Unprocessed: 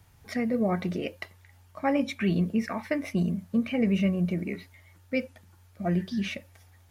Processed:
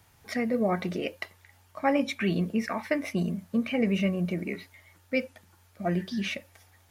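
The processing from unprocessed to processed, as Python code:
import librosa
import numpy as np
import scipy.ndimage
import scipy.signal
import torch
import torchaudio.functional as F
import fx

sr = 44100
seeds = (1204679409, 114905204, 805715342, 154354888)

y = fx.low_shelf(x, sr, hz=180.0, db=-10.0)
y = F.gain(torch.from_numpy(y), 2.5).numpy()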